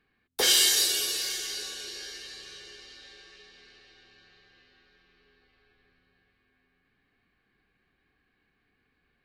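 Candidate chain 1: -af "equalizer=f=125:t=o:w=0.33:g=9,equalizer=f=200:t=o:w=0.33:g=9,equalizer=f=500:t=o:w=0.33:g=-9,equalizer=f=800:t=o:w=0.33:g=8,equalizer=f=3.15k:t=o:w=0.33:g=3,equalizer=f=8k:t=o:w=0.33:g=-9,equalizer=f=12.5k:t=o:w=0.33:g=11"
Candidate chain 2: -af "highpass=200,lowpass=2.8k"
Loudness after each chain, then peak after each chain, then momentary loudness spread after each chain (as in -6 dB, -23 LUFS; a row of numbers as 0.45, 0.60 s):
-22.5, -32.5 LUFS; -7.5, -16.0 dBFS; 22, 23 LU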